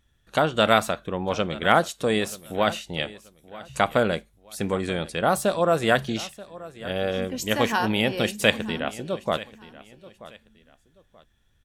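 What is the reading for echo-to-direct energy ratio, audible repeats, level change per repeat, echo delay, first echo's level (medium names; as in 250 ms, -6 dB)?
-18.0 dB, 2, -11.0 dB, 932 ms, -18.5 dB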